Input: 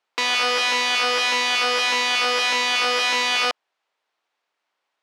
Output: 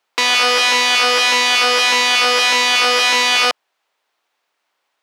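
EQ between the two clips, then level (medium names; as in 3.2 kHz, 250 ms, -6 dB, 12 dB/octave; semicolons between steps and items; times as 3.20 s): high-pass 110 Hz; treble shelf 8.5 kHz +7.5 dB; +6.0 dB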